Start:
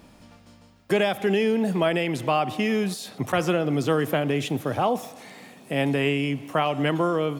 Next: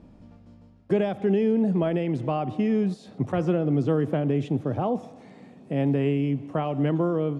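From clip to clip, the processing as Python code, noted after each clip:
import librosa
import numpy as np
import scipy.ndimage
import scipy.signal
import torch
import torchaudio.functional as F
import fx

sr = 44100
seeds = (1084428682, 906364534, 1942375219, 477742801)

y = scipy.signal.sosfilt(scipy.signal.bessel(8, 6700.0, 'lowpass', norm='mag', fs=sr, output='sos'), x)
y = fx.tilt_shelf(y, sr, db=9.0, hz=770.0)
y = y * librosa.db_to_amplitude(-5.5)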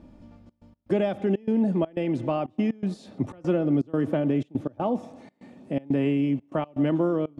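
y = x + 0.36 * np.pad(x, (int(3.4 * sr / 1000.0), 0))[:len(x)]
y = fx.step_gate(y, sr, bpm=122, pattern='xxxx.x.xxxx.xxx.', floor_db=-24.0, edge_ms=4.5)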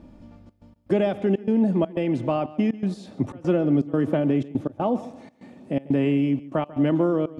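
y = x + 10.0 ** (-18.5 / 20.0) * np.pad(x, (int(143 * sr / 1000.0), 0))[:len(x)]
y = y * librosa.db_to_amplitude(2.5)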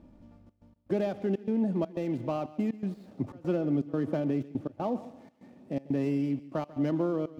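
y = scipy.ndimage.median_filter(x, 15, mode='constant')
y = fx.echo_wet_highpass(y, sr, ms=128, feedback_pct=67, hz=2200.0, wet_db=-20.5)
y = y * librosa.db_to_amplitude(-7.5)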